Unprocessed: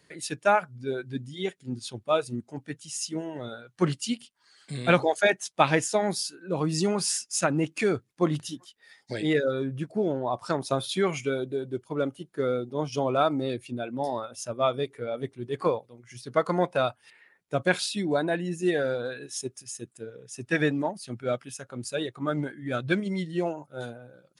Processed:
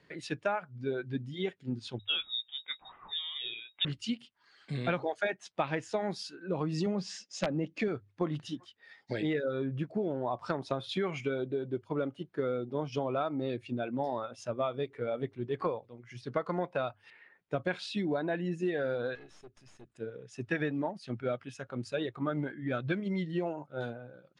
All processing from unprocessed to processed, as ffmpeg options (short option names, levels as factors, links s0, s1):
-filter_complex "[0:a]asettb=1/sr,asplit=3[s0][s1][s2];[s0]atrim=end=1.994[s3];[s1]atrim=start=1.99:end=3.85,asetpts=PTS-STARTPTS,afade=t=in:d=0.004:c=qsin,afade=t=out:st=1.856:d=0.004:c=qsin,asplit=2[s4][s5];[s5]adelay=17,volume=0.355[s6];[s4][s6]amix=inputs=2:normalize=0,atrim=end_sample=82026,lowpass=f=3300:t=q:w=0.5098,lowpass=f=3300:t=q:w=0.6013,lowpass=f=3300:t=q:w=0.9,lowpass=f=3300:t=q:w=2.563,afreqshift=-3900[s7];[s2]atrim=start=3.846[s8];[s3][s7]acrossfade=d=0.004:c1=hsin:c2=qsin[s9];[s9][s8]acrossfade=d=0.004:c1=qsin:c2=hsin,asettb=1/sr,asplit=3[s10][s11][s12];[s10]atrim=end=6.864[s13];[s11]atrim=start=6.86:end=7.88,asetpts=PTS-STARTPTS,afade=t=in:d=0.004:c=qsin,afade=t=out:st=1.016:d=0.004:c=qsin,highpass=130,equalizer=f=190:t=q:w=4:g=9,equalizer=f=550:t=q:w=4:g=6,equalizer=f=970:t=q:w=4:g=-5,equalizer=f=1400:t=q:w=4:g=-8,equalizer=f=2500:t=q:w=4:g=-5,lowpass=f=7200:w=0.5412,lowpass=f=7200:w=1.3066,aeval=exprs='(mod(3.76*val(0)+1,2)-1)/3.76':c=same[s14];[s12]atrim=start=7.876[s15];[s13][s14]acrossfade=d=0.004:c1=hsin:c2=qsin[s16];[s16][s15]acrossfade=d=0.004:c1=qsin:c2=hsin,asettb=1/sr,asplit=3[s17][s18][s19];[s17]atrim=end=19.154[s20];[s18]atrim=start=19.15:end=19.9,asetpts=PTS-STARTPTS,afade=t=in:d=0.004:c=qsin,afade=t=out:st=0.746:d=0.004:c=qsin,acompressor=threshold=0.00631:ratio=3:attack=3.2:release=140:knee=1:detection=peak,aeval=exprs='(tanh(200*val(0)+0.65)-tanh(0.65))/200':c=same[s21];[s19]atrim=start=19.896[s22];[s20][s21]acrossfade=d=0.004:c1=hsin:c2=qsin[s23];[s23][s22]acrossfade=d=0.004:c1=qsin:c2=hsin,lowpass=3300,bandreject=f=50:t=h:w=6,bandreject=f=100:t=h:w=6,acompressor=threshold=0.0355:ratio=5"